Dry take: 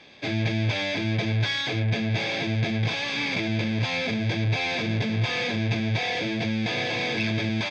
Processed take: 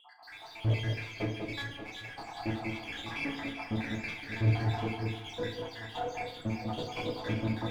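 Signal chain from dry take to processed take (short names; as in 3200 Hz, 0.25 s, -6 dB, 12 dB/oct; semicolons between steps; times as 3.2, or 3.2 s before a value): random spectral dropouts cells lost 85%; AGC gain up to 10.5 dB; added harmonics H 8 -21 dB, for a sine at -6 dBFS; wow and flutter 25 cents; overdrive pedal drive 23 dB, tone 1500 Hz, clips at -32.5 dBFS; echo with dull and thin repeats by turns 0.195 s, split 1300 Hz, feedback 68%, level -4 dB; FDN reverb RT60 0.69 s, low-frequency decay 1×, high-frequency decay 0.65×, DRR 1 dB; gain -9 dB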